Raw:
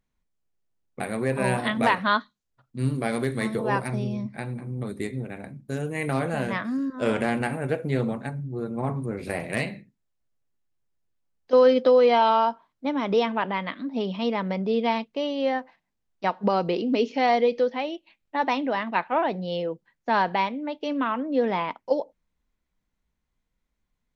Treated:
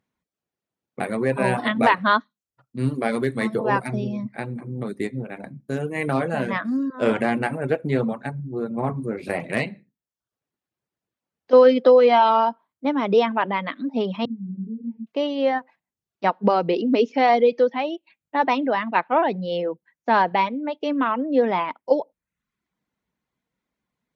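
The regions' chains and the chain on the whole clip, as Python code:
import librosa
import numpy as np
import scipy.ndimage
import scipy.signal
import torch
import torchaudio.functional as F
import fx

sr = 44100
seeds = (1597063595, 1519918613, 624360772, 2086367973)

y = fx.chain(x, sr, fx.cheby2_bandstop(low_hz=600.0, high_hz=7200.0, order=4, stop_db=50),
    fx.detune_double(cents=49), at=(14.25, 15.07))
y = fx.dereverb_blind(y, sr, rt60_s=0.55)
y = scipy.signal.sosfilt(scipy.signal.butter(2, 140.0, 'highpass', fs=sr, output='sos'), y)
y = fx.high_shelf(y, sr, hz=4100.0, db=-8.5)
y = F.gain(torch.from_numpy(y), 5.0).numpy()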